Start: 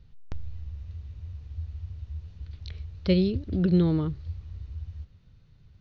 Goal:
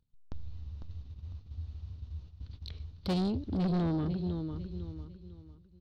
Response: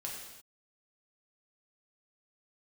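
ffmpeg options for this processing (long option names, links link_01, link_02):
-af "equalizer=frequency=250:width_type=o:width=1:gain=7,equalizer=frequency=1000:width_type=o:width=1:gain=5,equalizer=frequency=2000:width_type=o:width=1:gain=-5,equalizer=frequency=4000:width_type=o:width=1:gain=7,acompressor=mode=upward:threshold=-35dB:ratio=2.5,agate=range=-31dB:threshold=-38dB:ratio=16:detection=peak,aecho=1:1:501|1002|1503|2004:0.316|0.101|0.0324|0.0104,asoftclip=type=tanh:threshold=-21.5dB,volume=-5dB"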